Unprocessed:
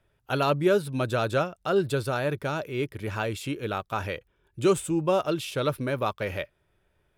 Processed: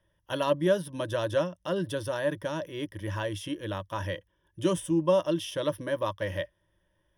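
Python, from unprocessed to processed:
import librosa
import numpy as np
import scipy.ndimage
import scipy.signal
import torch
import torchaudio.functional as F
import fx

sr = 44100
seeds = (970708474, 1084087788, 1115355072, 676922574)

y = fx.ripple_eq(x, sr, per_octave=1.2, db=14)
y = F.gain(torch.from_numpy(y), -5.0).numpy()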